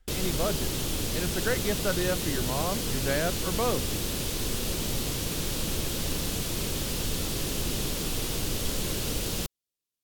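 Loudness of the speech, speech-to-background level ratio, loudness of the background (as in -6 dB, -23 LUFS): -32.0 LUFS, -2.0 dB, -30.0 LUFS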